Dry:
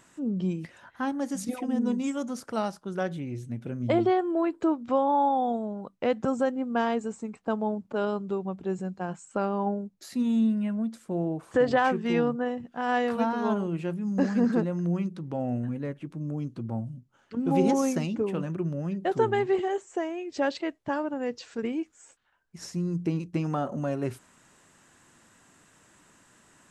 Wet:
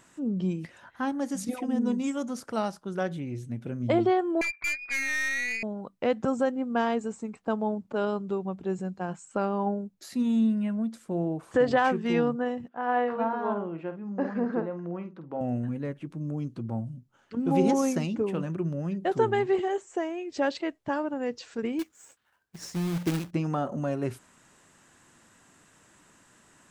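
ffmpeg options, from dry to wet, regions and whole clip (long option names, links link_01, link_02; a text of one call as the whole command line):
ffmpeg -i in.wav -filter_complex "[0:a]asettb=1/sr,asplit=3[link_01][link_02][link_03];[link_01]atrim=end=4.414[link_04];[link_02]atrim=start=4.41:end=5.63,asetpts=PTS-STARTPTS,afade=type=in:duration=0.004:curve=qsin,afade=type=out:start_time=1.216:duration=0.004:curve=qsin,lowpass=frequency=2300:width_type=q:width=0.5098,lowpass=frequency=2300:width_type=q:width=0.6013,lowpass=frequency=2300:width_type=q:width=0.9,lowpass=frequency=2300:width_type=q:width=2.563,afreqshift=-2700,aeval=exprs='(tanh(20*val(0)+0.4)-tanh(0.4))/20':channel_layout=same[link_05];[link_03]atrim=start=5.626[link_06];[link_04][link_05]acrossfade=duration=0.004:curve1=hsin:curve2=qsin[link_07];[link_07][link_06]acrossfade=duration=0.004:curve1=qsin:curve2=hsin,asettb=1/sr,asplit=3[link_08][link_09][link_10];[link_08]atrim=end=12.684[link_11];[link_09]atrim=start=12.68:end=15.41,asetpts=PTS-STARTPTS,afade=type=in:duration=0.004:curve=qsin,afade=type=out:start_time=2.726:duration=0.004:curve=qsin,bandpass=frequency=900:width_type=q:width=0.56,aemphasis=mode=reproduction:type=75fm,asplit=2[link_12][link_13];[link_13]adelay=49,volume=-10dB[link_14];[link_12][link_14]amix=inputs=2:normalize=0,atrim=end_sample=120393[link_15];[link_10]atrim=start=15.406[link_16];[link_11][link_15]acrossfade=duration=0.004:curve1=hsin:curve2=qsin[link_17];[link_17][link_16]acrossfade=duration=0.004:curve1=qsin:curve2=hsin,asettb=1/sr,asplit=3[link_18][link_19][link_20];[link_18]atrim=end=21.794[link_21];[link_19]atrim=start=21.79:end=23.31,asetpts=PTS-STARTPTS,afade=type=in:duration=0.004:curve=qsin,afade=type=out:start_time=1.516:duration=0.004:curve=qsin,highpass=56,acrusher=bits=2:mode=log:mix=0:aa=0.000001[link_22];[link_20]atrim=start=23.306[link_23];[link_21][link_22]acrossfade=duration=0.004:curve1=hsin:curve2=qsin[link_24];[link_24][link_23]acrossfade=duration=0.004:curve1=qsin:curve2=hsin" out.wav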